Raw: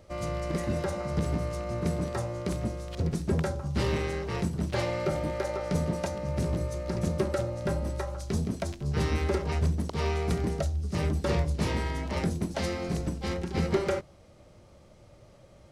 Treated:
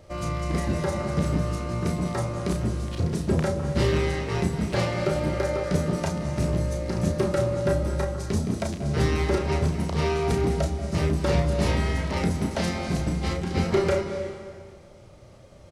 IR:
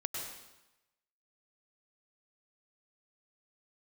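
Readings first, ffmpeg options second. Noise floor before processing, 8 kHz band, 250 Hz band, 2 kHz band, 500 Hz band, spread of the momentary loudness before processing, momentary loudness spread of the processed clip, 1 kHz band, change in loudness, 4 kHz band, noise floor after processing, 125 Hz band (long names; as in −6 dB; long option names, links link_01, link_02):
−55 dBFS, +5.0 dB, +5.0 dB, +5.0 dB, +5.0 dB, 4 LU, 5 LU, +4.5 dB, +4.5 dB, +5.0 dB, −48 dBFS, +4.5 dB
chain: -filter_complex "[0:a]asplit=2[link_01][link_02];[link_02]adelay=33,volume=-5.5dB[link_03];[link_01][link_03]amix=inputs=2:normalize=0,asplit=2[link_04][link_05];[1:a]atrim=start_sample=2205,asetrate=22932,aresample=44100[link_06];[link_05][link_06]afir=irnorm=-1:irlink=0,volume=-9.5dB[link_07];[link_04][link_07]amix=inputs=2:normalize=0"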